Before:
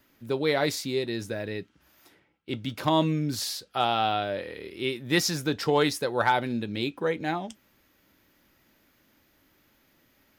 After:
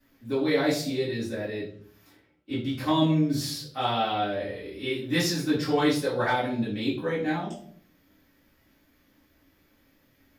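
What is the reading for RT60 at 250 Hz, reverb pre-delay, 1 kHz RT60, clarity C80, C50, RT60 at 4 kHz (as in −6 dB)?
0.80 s, 3 ms, 0.50 s, 10.5 dB, 5.5 dB, 0.40 s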